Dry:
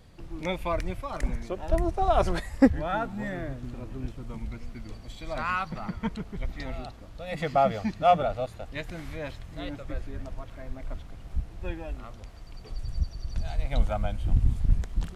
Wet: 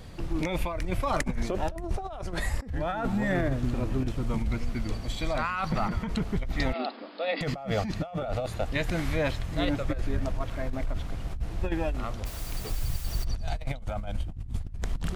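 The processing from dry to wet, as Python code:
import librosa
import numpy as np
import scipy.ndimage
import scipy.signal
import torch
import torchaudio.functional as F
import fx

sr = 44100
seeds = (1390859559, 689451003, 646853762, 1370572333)

y = fx.over_compress(x, sr, threshold_db=-34.0, ratio=-1.0)
y = fx.brickwall_bandpass(y, sr, low_hz=210.0, high_hz=5200.0, at=(6.73, 7.41))
y = fx.quant_dither(y, sr, seeds[0], bits=8, dither='triangular', at=(12.25, 13.23), fade=0.02)
y = F.gain(torch.from_numpy(y), 4.5).numpy()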